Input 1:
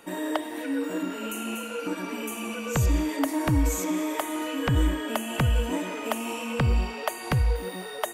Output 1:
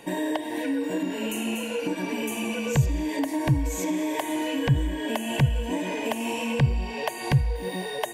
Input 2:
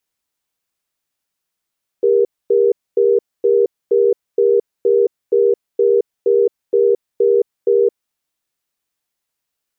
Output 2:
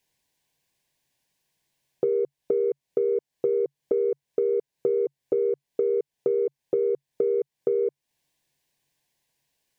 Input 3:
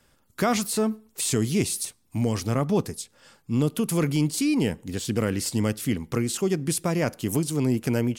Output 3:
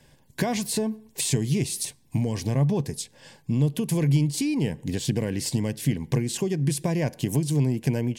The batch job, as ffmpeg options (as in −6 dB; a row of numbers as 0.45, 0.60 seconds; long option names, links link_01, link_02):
-af "asoftclip=type=tanh:threshold=-8.5dB,asuperstop=centerf=1300:order=4:qfactor=3,highshelf=frequency=9100:gain=-6,acompressor=threshold=-30dB:ratio=4,equalizer=frequency=140:width=5.5:gain=11.5,volume=5.5dB"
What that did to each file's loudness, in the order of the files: +1.0, −10.0, −0.5 LU